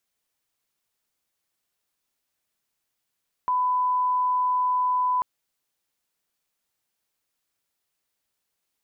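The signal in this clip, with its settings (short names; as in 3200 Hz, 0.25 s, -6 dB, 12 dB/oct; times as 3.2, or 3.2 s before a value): line-up tone -20 dBFS 1.74 s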